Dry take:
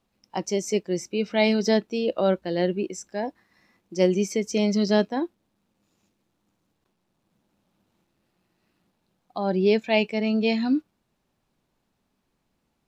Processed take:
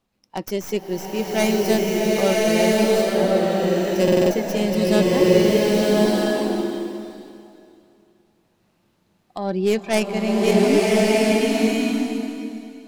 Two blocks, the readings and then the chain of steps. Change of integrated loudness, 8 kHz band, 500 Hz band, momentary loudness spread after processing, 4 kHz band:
+5.0 dB, +7.5 dB, +7.5 dB, 12 LU, +6.5 dB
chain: tracing distortion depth 0.18 ms; stuck buffer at 1.86/4.03/5.23/8.69, samples 2048, times 5; bloom reverb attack 1.26 s, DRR -5.5 dB

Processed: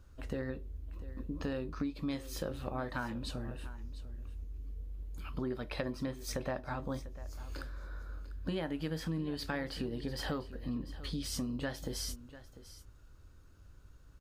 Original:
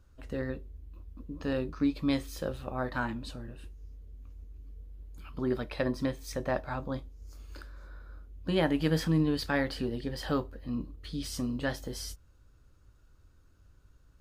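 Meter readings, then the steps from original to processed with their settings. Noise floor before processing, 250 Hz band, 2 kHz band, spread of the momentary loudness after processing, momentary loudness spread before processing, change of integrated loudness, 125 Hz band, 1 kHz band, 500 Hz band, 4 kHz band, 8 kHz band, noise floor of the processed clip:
-61 dBFS, -6.5 dB, -6.0 dB, 10 LU, 22 LU, -7.0 dB, -5.0 dB, -5.5 dB, -6.5 dB, -3.0 dB, 0.0 dB, -57 dBFS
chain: compressor 6:1, threshold -37 dBFS, peak gain reduction 14.5 dB; on a send: echo 0.696 s -16 dB; on the sum: gain +3 dB

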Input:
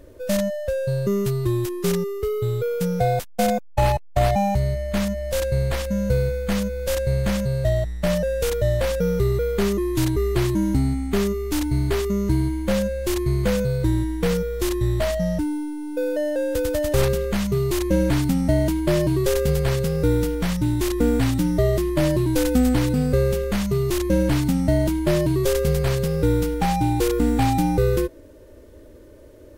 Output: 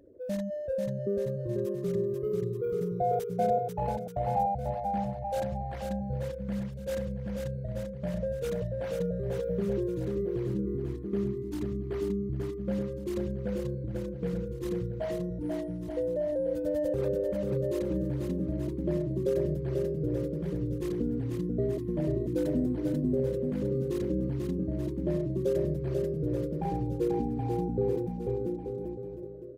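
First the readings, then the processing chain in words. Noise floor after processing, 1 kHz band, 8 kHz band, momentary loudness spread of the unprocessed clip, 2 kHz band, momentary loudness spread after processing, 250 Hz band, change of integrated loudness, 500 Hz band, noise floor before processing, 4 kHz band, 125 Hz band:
-38 dBFS, -7.0 dB, under -20 dB, 4 LU, -19.0 dB, 6 LU, -9.5 dB, -9.5 dB, -8.0 dB, -44 dBFS, -20.5 dB, -11.0 dB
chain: formant sharpening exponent 2; HPF 290 Hz 6 dB/oct; bouncing-ball echo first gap 0.49 s, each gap 0.8×, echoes 5; gain -6 dB

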